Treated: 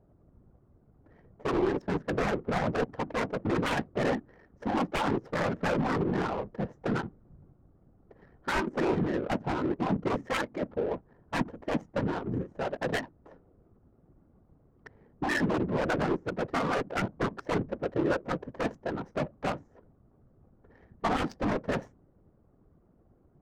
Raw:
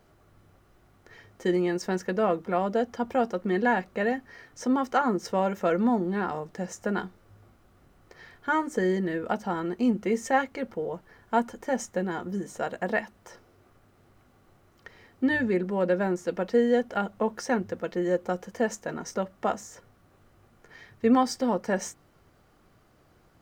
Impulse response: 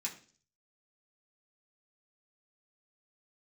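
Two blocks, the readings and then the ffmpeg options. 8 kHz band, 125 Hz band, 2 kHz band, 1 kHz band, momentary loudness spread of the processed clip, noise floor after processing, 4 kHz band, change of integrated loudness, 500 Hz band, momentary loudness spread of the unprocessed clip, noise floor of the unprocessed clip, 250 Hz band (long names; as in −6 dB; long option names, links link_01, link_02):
−8.5 dB, +2.5 dB, −2.0 dB, −3.5 dB, 7 LU, −64 dBFS, +1.5 dB, −3.5 dB, −4.0 dB, 9 LU, −62 dBFS, −4.0 dB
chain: -af "aeval=exprs='0.0668*(abs(mod(val(0)/0.0668+3,4)-2)-1)':channel_layout=same,afftfilt=real='hypot(re,im)*cos(2*PI*random(0))':imag='hypot(re,im)*sin(2*PI*random(1))':win_size=512:overlap=0.75,adynamicsmooth=sensitivity=7.5:basefreq=520,volume=7dB"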